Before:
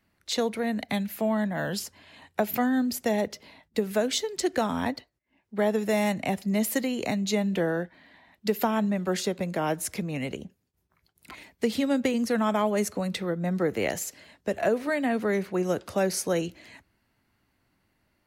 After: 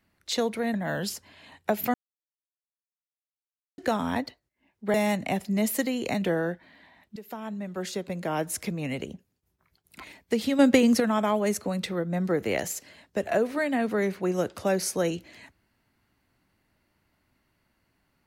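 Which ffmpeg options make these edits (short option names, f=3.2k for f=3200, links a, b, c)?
-filter_complex "[0:a]asplit=9[a][b][c][d][e][f][g][h][i];[a]atrim=end=0.742[j];[b]atrim=start=1.438:end=2.64,asetpts=PTS-STARTPTS,afade=t=out:st=1.198:d=0.004:c=hsin[k];[c]atrim=start=2.64:end=4.48,asetpts=PTS-STARTPTS,volume=0[l];[d]atrim=start=4.48:end=5.642,asetpts=PTS-STARTPTS,afade=t=in:d=0.004:c=hsin[m];[e]atrim=start=5.908:end=7.192[n];[f]atrim=start=7.528:end=8.47,asetpts=PTS-STARTPTS,afade=t=out:st=0.938:d=0.004:c=hsin:silence=0.112202[o];[g]atrim=start=8.47:end=11.902,asetpts=PTS-STARTPTS,afade=t=in:d=1.42:silence=0.112202[p];[h]atrim=start=11.898:end=12.312,asetpts=PTS-STARTPTS,volume=6.5dB[q];[i]atrim=start=12.308[r];[k][l][m]concat=n=3:v=0:a=1[s];[j][s]acrossfade=d=0.004:c1=hsin:c2=hsin[t];[t][n]acrossfade=d=0.004:c1=hsin:c2=hsin[u];[o][p]concat=n=2:v=0:a=1[v];[u][v]acrossfade=d=0.004:c1=hsin:c2=hsin[w];[w][q]acrossfade=d=0.004:c1=hsin:c2=hsin[x];[x][r]acrossfade=d=0.004:c1=hsin:c2=hsin"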